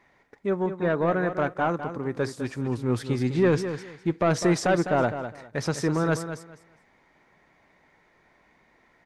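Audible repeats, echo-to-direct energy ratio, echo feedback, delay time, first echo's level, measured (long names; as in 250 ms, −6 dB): 2, −10.0 dB, 21%, 204 ms, −10.0 dB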